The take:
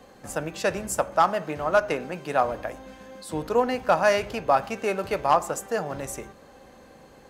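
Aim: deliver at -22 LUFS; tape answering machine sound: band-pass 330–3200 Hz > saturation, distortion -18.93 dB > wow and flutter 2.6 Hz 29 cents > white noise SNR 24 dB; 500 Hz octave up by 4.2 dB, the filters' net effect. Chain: band-pass 330–3200 Hz; peaking EQ 500 Hz +6 dB; saturation -9 dBFS; wow and flutter 2.6 Hz 29 cents; white noise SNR 24 dB; trim +2 dB

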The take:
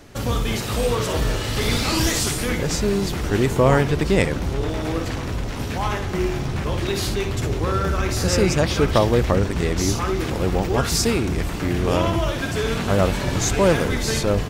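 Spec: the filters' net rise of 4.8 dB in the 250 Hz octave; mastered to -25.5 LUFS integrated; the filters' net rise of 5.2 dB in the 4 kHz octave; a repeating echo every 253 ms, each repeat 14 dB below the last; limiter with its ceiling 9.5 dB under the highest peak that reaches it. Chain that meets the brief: peaking EQ 250 Hz +6.5 dB; peaking EQ 4 kHz +6.5 dB; peak limiter -11 dBFS; feedback delay 253 ms, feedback 20%, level -14 dB; trim -4.5 dB

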